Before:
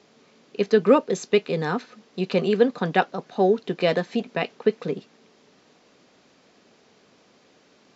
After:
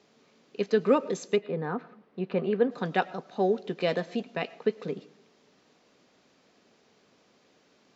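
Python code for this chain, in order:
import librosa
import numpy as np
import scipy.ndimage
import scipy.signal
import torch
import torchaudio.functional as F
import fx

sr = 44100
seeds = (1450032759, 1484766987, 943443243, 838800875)

y = fx.lowpass(x, sr, hz=fx.line((1.35, 1400.0), (2.7, 2200.0)), slope=12, at=(1.35, 2.7), fade=0.02)
y = fx.rev_freeverb(y, sr, rt60_s=0.46, hf_ratio=0.5, predelay_ms=65, drr_db=19.0)
y = y * 10.0 ** (-6.0 / 20.0)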